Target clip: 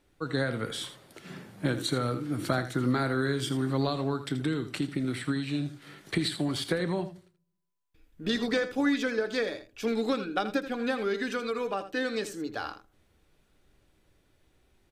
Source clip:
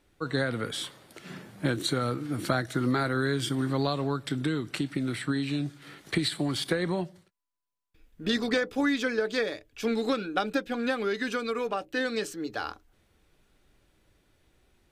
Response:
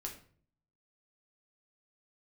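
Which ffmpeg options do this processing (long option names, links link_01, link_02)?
-filter_complex "[0:a]aecho=1:1:81:0.251,asplit=2[link_01][link_02];[1:a]atrim=start_sample=2205,lowpass=1200[link_03];[link_02][link_03]afir=irnorm=-1:irlink=0,volume=-12.5dB[link_04];[link_01][link_04]amix=inputs=2:normalize=0,volume=-2dB"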